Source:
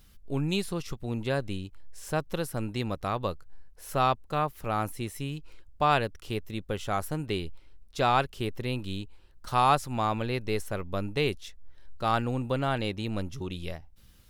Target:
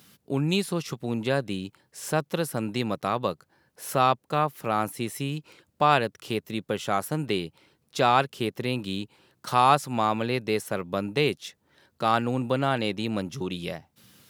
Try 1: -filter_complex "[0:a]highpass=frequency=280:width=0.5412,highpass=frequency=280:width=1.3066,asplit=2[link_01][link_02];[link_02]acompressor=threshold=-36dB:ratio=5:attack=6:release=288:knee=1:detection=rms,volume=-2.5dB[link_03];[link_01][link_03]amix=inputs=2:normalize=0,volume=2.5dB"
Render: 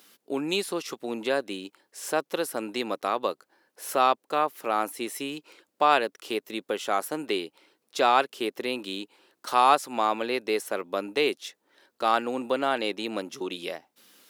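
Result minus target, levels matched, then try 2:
125 Hz band −18.5 dB
-filter_complex "[0:a]highpass=frequency=130:width=0.5412,highpass=frequency=130:width=1.3066,asplit=2[link_01][link_02];[link_02]acompressor=threshold=-36dB:ratio=5:attack=6:release=288:knee=1:detection=rms,volume=-2.5dB[link_03];[link_01][link_03]amix=inputs=2:normalize=0,volume=2.5dB"

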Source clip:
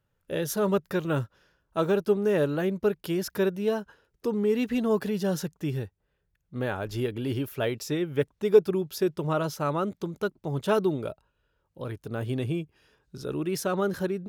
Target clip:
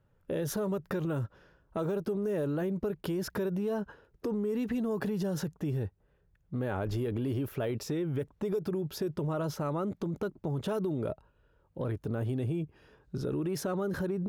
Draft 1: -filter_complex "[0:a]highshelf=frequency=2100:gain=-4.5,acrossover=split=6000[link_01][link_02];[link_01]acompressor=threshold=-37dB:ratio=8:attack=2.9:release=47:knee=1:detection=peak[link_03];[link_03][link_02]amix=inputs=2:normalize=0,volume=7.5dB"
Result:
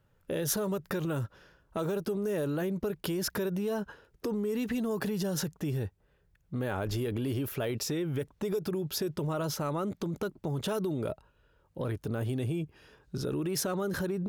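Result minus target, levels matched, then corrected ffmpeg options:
4,000 Hz band +7.0 dB
-filter_complex "[0:a]highshelf=frequency=2100:gain=-14,acrossover=split=6000[link_01][link_02];[link_01]acompressor=threshold=-37dB:ratio=8:attack=2.9:release=47:knee=1:detection=peak[link_03];[link_03][link_02]amix=inputs=2:normalize=0,volume=7.5dB"

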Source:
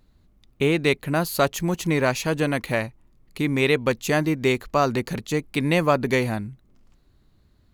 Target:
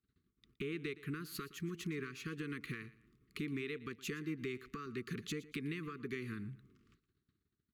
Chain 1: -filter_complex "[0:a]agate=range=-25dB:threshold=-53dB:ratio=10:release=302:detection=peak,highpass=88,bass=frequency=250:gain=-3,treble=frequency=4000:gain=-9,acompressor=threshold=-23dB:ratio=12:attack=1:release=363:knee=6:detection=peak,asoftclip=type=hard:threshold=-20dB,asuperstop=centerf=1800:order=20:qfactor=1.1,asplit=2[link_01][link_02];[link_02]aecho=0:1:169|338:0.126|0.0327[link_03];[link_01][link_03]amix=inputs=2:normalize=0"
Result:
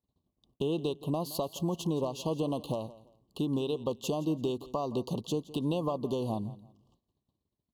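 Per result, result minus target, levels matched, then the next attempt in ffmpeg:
2,000 Hz band −19.5 dB; downward compressor: peak gain reduction −10 dB; echo 52 ms late
-filter_complex "[0:a]agate=range=-25dB:threshold=-53dB:ratio=10:release=302:detection=peak,highpass=88,bass=frequency=250:gain=-3,treble=frequency=4000:gain=-9,acompressor=threshold=-23dB:ratio=12:attack=1:release=363:knee=6:detection=peak,asoftclip=type=hard:threshold=-20dB,asuperstop=centerf=710:order=20:qfactor=1.1,asplit=2[link_01][link_02];[link_02]aecho=0:1:169|338:0.126|0.0327[link_03];[link_01][link_03]amix=inputs=2:normalize=0"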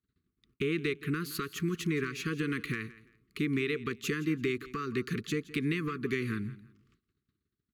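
downward compressor: peak gain reduction −10 dB; echo 52 ms late
-filter_complex "[0:a]agate=range=-25dB:threshold=-53dB:ratio=10:release=302:detection=peak,highpass=88,bass=frequency=250:gain=-3,treble=frequency=4000:gain=-9,acompressor=threshold=-34dB:ratio=12:attack=1:release=363:knee=6:detection=peak,asoftclip=type=hard:threshold=-20dB,asuperstop=centerf=710:order=20:qfactor=1.1,asplit=2[link_01][link_02];[link_02]aecho=0:1:169|338:0.126|0.0327[link_03];[link_01][link_03]amix=inputs=2:normalize=0"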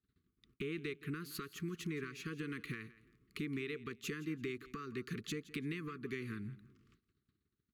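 echo 52 ms late
-filter_complex "[0:a]agate=range=-25dB:threshold=-53dB:ratio=10:release=302:detection=peak,highpass=88,bass=frequency=250:gain=-3,treble=frequency=4000:gain=-9,acompressor=threshold=-34dB:ratio=12:attack=1:release=363:knee=6:detection=peak,asoftclip=type=hard:threshold=-20dB,asuperstop=centerf=710:order=20:qfactor=1.1,asplit=2[link_01][link_02];[link_02]aecho=0:1:117|234:0.126|0.0327[link_03];[link_01][link_03]amix=inputs=2:normalize=0"

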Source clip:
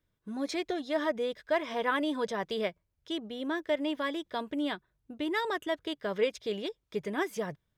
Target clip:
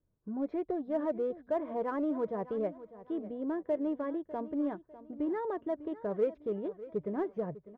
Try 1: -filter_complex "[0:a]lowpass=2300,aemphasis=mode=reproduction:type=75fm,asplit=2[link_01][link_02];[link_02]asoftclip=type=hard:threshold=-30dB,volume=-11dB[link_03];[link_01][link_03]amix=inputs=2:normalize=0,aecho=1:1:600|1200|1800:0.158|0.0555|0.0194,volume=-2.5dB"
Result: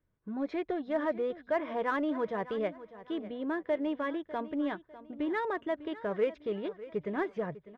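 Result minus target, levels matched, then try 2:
2,000 Hz band +11.0 dB
-filter_complex "[0:a]lowpass=790,aemphasis=mode=reproduction:type=75fm,asplit=2[link_01][link_02];[link_02]asoftclip=type=hard:threshold=-30dB,volume=-11dB[link_03];[link_01][link_03]amix=inputs=2:normalize=0,aecho=1:1:600|1200|1800:0.158|0.0555|0.0194,volume=-2.5dB"

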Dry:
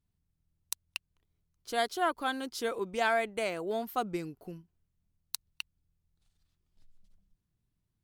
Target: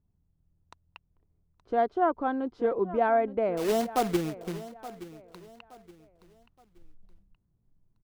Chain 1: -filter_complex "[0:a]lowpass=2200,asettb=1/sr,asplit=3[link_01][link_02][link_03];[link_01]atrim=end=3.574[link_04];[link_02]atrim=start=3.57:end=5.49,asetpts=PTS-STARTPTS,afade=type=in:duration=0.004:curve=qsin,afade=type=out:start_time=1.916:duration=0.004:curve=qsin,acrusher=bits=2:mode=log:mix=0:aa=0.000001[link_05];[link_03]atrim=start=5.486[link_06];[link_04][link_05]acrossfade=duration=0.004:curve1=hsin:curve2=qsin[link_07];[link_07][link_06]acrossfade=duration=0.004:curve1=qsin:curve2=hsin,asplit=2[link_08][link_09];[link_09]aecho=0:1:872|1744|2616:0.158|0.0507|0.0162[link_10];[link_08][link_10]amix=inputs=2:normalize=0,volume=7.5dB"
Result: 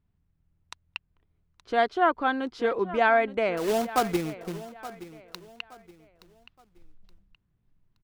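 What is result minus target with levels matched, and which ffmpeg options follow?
2,000 Hz band +8.0 dB
-filter_complex "[0:a]lowpass=830,asettb=1/sr,asplit=3[link_01][link_02][link_03];[link_01]atrim=end=3.574[link_04];[link_02]atrim=start=3.57:end=5.49,asetpts=PTS-STARTPTS,afade=type=in:duration=0.004:curve=qsin,afade=type=out:start_time=1.916:duration=0.004:curve=qsin,acrusher=bits=2:mode=log:mix=0:aa=0.000001[link_05];[link_03]atrim=start=5.486[link_06];[link_04][link_05]acrossfade=duration=0.004:curve1=hsin:curve2=qsin[link_07];[link_07][link_06]acrossfade=duration=0.004:curve1=qsin:curve2=hsin,asplit=2[link_08][link_09];[link_09]aecho=0:1:872|1744|2616:0.158|0.0507|0.0162[link_10];[link_08][link_10]amix=inputs=2:normalize=0,volume=7.5dB"

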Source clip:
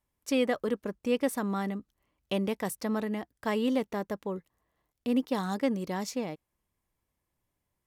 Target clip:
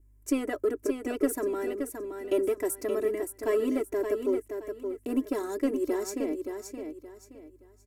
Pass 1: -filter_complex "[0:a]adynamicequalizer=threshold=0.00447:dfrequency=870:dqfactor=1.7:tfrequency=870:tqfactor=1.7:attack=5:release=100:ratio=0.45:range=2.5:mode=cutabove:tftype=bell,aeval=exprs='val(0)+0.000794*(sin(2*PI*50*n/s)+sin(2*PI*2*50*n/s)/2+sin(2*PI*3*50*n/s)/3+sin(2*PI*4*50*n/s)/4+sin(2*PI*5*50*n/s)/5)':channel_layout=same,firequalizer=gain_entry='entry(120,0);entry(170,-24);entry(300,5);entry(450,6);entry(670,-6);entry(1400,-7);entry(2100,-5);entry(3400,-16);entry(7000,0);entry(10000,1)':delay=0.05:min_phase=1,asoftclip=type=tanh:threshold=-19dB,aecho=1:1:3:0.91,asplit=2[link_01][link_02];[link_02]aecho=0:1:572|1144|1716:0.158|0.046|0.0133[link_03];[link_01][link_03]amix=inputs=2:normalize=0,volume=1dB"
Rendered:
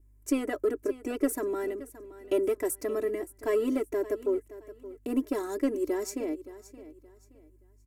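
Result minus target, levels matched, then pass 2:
echo-to-direct −9.5 dB
-filter_complex "[0:a]adynamicequalizer=threshold=0.00447:dfrequency=870:dqfactor=1.7:tfrequency=870:tqfactor=1.7:attack=5:release=100:ratio=0.45:range=2.5:mode=cutabove:tftype=bell,aeval=exprs='val(0)+0.000794*(sin(2*PI*50*n/s)+sin(2*PI*2*50*n/s)/2+sin(2*PI*3*50*n/s)/3+sin(2*PI*4*50*n/s)/4+sin(2*PI*5*50*n/s)/5)':channel_layout=same,firequalizer=gain_entry='entry(120,0);entry(170,-24);entry(300,5);entry(450,6);entry(670,-6);entry(1400,-7);entry(2100,-5);entry(3400,-16);entry(7000,0);entry(10000,1)':delay=0.05:min_phase=1,asoftclip=type=tanh:threshold=-19dB,aecho=1:1:3:0.91,asplit=2[link_01][link_02];[link_02]aecho=0:1:572|1144|1716|2288:0.473|0.137|0.0398|0.0115[link_03];[link_01][link_03]amix=inputs=2:normalize=0,volume=1dB"

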